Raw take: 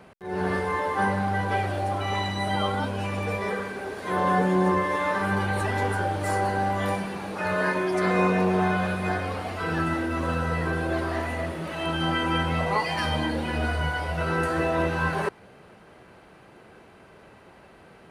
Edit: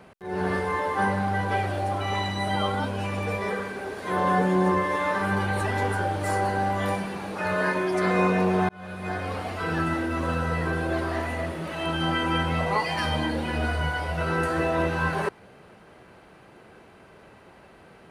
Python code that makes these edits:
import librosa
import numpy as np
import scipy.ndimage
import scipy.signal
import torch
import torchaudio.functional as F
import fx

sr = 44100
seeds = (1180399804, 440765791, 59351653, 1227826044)

y = fx.edit(x, sr, fx.fade_in_span(start_s=8.69, length_s=0.66), tone=tone)